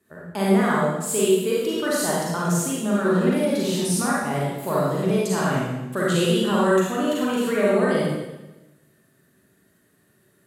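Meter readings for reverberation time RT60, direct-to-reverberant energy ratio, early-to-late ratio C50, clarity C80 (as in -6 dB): 1.0 s, -6.5 dB, -3.0 dB, 1.0 dB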